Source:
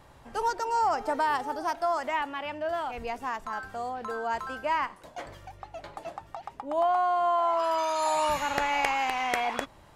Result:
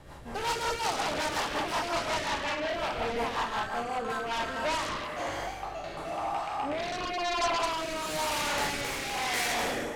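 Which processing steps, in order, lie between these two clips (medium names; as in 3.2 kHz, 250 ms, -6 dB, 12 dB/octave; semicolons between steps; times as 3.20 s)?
spectral sustain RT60 0.95 s; Schroeder reverb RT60 1.1 s, DRR 0.5 dB; in parallel at -11 dB: sine folder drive 17 dB, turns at -10.5 dBFS; on the sum: rotary cabinet horn 5.5 Hz, later 1 Hz, at 4.01 s; trim -7.5 dB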